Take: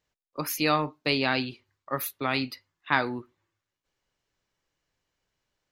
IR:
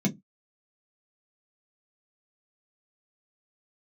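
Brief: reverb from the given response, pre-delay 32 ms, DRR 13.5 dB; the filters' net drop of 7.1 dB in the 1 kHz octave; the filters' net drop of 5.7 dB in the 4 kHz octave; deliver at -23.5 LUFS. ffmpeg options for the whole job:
-filter_complex "[0:a]equalizer=f=1000:t=o:g=-9,equalizer=f=4000:t=o:g=-6.5,asplit=2[s0][s1];[1:a]atrim=start_sample=2205,adelay=32[s2];[s1][s2]afir=irnorm=-1:irlink=0,volume=0.106[s3];[s0][s3]amix=inputs=2:normalize=0,volume=2"

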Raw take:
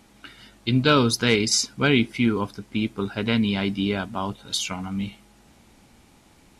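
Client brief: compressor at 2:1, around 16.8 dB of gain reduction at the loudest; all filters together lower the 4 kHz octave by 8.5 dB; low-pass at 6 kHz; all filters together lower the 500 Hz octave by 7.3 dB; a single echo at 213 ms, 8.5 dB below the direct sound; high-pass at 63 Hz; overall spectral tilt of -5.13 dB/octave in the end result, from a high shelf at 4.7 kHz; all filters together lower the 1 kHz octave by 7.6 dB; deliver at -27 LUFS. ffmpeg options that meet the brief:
-af "highpass=63,lowpass=6000,equalizer=f=500:t=o:g=-7.5,equalizer=f=1000:t=o:g=-8,equalizer=f=4000:t=o:g=-7.5,highshelf=f=4700:g=-4.5,acompressor=threshold=0.00316:ratio=2,aecho=1:1:213:0.376,volume=5.31"

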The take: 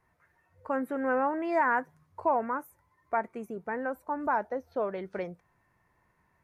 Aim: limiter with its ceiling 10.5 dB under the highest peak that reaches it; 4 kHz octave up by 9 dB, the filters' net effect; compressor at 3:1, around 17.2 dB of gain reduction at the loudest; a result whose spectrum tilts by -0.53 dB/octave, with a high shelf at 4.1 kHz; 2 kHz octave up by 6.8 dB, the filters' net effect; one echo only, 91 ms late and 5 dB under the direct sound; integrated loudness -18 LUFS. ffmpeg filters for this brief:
-af "equalizer=f=2000:t=o:g=7,equalizer=f=4000:t=o:g=4.5,highshelf=f=4100:g=8.5,acompressor=threshold=0.00708:ratio=3,alimiter=level_in=4.47:limit=0.0631:level=0:latency=1,volume=0.224,aecho=1:1:91:0.562,volume=25.1"

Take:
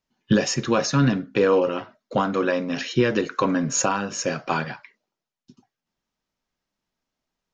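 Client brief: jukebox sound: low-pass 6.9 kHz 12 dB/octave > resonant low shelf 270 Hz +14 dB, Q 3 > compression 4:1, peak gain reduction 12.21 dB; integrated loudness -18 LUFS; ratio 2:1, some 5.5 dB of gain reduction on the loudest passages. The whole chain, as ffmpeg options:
-af "acompressor=threshold=0.0631:ratio=2,lowpass=6900,lowshelf=f=270:t=q:w=3:g=14,acompressor=threshold=0.178:ratio=4,volume=1.33"

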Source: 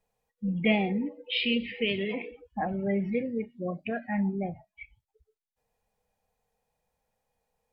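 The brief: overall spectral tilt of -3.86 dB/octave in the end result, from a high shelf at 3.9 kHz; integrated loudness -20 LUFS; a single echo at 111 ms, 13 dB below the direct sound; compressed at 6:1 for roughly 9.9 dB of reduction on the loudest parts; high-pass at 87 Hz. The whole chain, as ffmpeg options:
-af "highpass=87,highshelf=f=3900:g=5,acompressor=threshold=0.0355:ratio=6,aecho=1:1:111:0.224,volume=5.01"

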